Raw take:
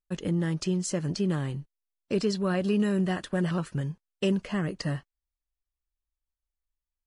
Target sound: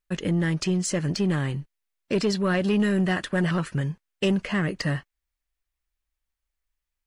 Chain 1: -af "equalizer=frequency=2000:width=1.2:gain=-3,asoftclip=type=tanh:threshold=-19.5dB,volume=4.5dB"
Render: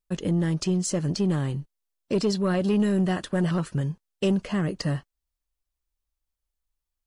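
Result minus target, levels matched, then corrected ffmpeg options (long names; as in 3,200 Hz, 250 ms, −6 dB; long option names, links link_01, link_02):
2,000 Hz band −7.0 dB
-af "equalizer=frequency=2000:width=1.2:gain=6,asoftclip=type=tanh:threshold=-19.5dB,volume=4.5dB"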